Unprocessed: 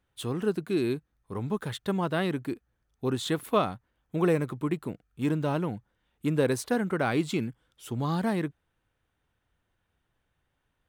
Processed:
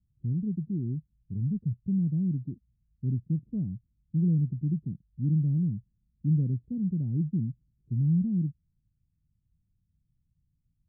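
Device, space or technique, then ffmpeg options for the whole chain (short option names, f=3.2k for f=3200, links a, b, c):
the neighbour's flat through the wall: -af "lowpass=f=190:w=0.5412,lowpass=f=190:w=1.3066,equalizer=f=160:t=o:w=0.77:g=3.5,volume=4.5dB"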